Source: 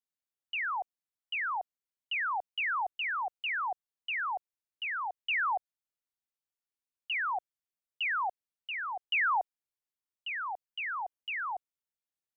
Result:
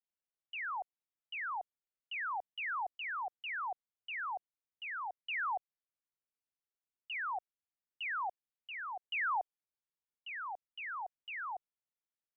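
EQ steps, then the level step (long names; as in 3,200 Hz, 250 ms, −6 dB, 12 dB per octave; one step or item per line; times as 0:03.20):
high-frequency loss of the air 280 metres
−4.0 dB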